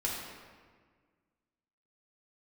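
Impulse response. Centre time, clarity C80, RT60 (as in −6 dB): 84 ms, 2.0 dB, 1.6 s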